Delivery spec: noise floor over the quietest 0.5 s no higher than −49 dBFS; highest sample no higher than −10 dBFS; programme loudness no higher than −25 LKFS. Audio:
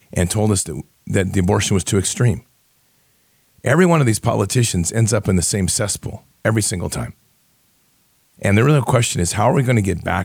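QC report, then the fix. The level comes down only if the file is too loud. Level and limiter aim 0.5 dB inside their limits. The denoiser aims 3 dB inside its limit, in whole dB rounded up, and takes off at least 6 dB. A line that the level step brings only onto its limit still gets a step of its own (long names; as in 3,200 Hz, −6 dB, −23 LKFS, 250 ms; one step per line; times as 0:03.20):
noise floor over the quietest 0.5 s −59 dBFS: in spec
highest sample −3.0 dBFS: out of spec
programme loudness −17.5 LKFS: out of spec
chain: level −8 dB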